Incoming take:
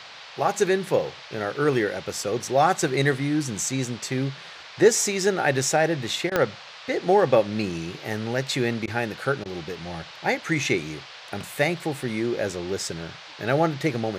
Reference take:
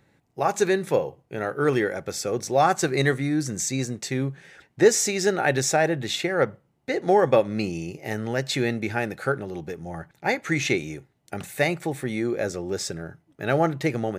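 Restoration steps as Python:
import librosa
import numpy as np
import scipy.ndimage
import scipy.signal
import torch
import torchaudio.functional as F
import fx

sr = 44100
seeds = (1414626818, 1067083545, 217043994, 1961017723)

y = fx.fix_declick_ar(x, sr, threshold=10.0)
y = fx.fix_interpolate(y, sr, at_s=(6.3, 8.86, 9.44), length_ms=14.0)
y = fx.noise_reduce(y, sr, print_start_s=4.3, print_end_s=4.8, reduce_db=15.0)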